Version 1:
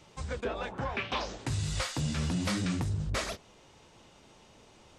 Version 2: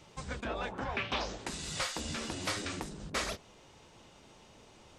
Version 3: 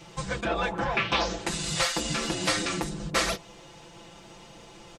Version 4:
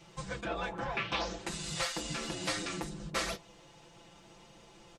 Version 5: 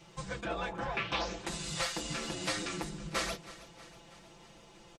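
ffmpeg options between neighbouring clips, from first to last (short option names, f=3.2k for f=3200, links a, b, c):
-af "afftfilt=real='re*lt(hypot(re,im),0.141)':imag='im*lt(hypot(re,im),0.141)':win_size=1024:overlap=0.75"
-af "aecho=1:1:5.9:0.9,volume=6.5dB"
-af "flanger=delay=4.9:depth=2.8:regen=-71:speed=0.64:shape=triangular,volume=-4dB"
-af "aecho=1:1:320|640|960|1280|1600:0.141|0.0819|0.0475|0.0276|0.016"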